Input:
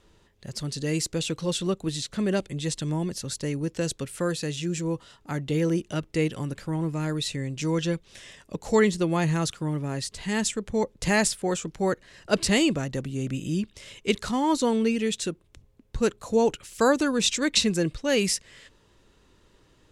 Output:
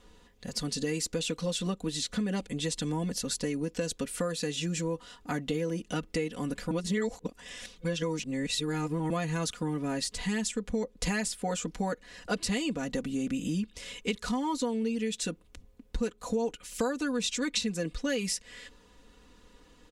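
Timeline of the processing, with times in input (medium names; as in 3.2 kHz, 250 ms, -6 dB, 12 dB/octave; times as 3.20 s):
6.71–9.10 s: reverse
whole clip: comb 4.1 ms, depth 85%; compression 6:1, threshold -28 dBFS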